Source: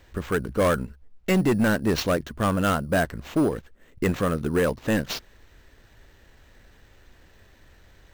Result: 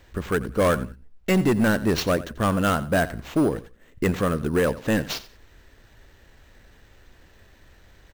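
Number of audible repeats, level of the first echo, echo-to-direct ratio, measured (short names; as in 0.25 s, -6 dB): 2, -17.0 dB, -17.0 dB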